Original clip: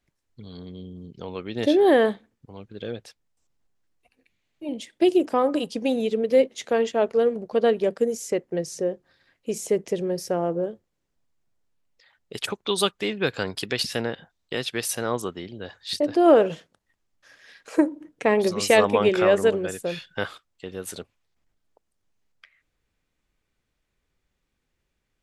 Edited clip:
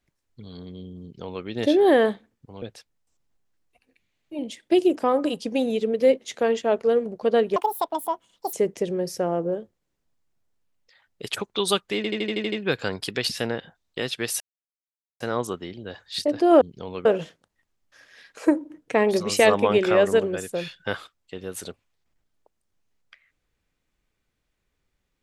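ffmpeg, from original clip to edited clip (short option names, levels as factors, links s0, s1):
-filter_complex "[0:a]asplit=14[s0][s1][s2][s3][s4][s5][s6][s7][s8][s9][s10][s11][s12][s13];[s0]atrim=end=2.622[s14];[s1]atrim=start=2.918:end=7.864[s15];[s2]atrim=start=7.86:end=9.64,asetpts=PTS-STARTPTS,asetrate=80703,aresample=44100,atrim=end_sample=42895,asetpts=PTS-STARTPTS[s16];[s3]atrim=start=9.636:end=13.152[s17];[s4]atrim=start=13.068:end=13.152[s18];[s5]atrim=start=13.068:end=13.152[s19];[s6]atrim=start=13.068:end=13.152[s20];[s7]atrim=start=13.068:end=13.152[s21];[s8]atrim=start=13.068:end=13.152[s22];[s9]atrim=start=13.068:end=13.152[s23];[s10]atrim=start=13.068:end=14.95,asetpts=PTS-STARTPTS,afade=t=out:st=1.878:d=0.004:c=hsin,apad=pad_dur=0.8[s24];[s11]atrim=start=14.95:end=16.362,asetpts=PTS-STARTPTS,afade=t=in:d=0.004:c=hsin[s25];[s12]atrim=start=1.018:end=1.462[s26];[s13]atrim=start=16.358[s27];[s14][s15]acrossfade=d=0.004:c1=hsin:c2=hsin[s28];[s28][s16]acrossfade=d=0.004:c1=hsin:c2=hsin[s29];[s29][s17]acrossfade=d=0.004:c1=hsin:c2=hsin[s30];[s30][s18]acrossfade=d=0.004:c1=hsin:c2=hsin[s31];[s31][s19]acrossfade=d=0.004:c1=hsin:c2=hsin[s32];[s32][s20]acrossfade=d=0.004:c1=hsin:c2=hsin[s33];[s33][s21]acrossfade=d=0.004:c1=hsin:c2=hsin[s34];[s34][s22]acrossfade=d=0.004:c1=hsin:c2=hsin[s35];[s35][s23]acrossfade=d=0.004:c1=hsin:c2=hsin[s36];[s24][s25]concat=n=2:v=0:a=1[s37];[s36][s37]acrossfade=d=0.004:c1=hsin:c2=hsin[s38];[s38][s26]acrossfade=d=0.004:c1=hsin:c2=hsin[s39];[s39][s27]acrossfade=d=0.004:c1=hsin:c2=hsin"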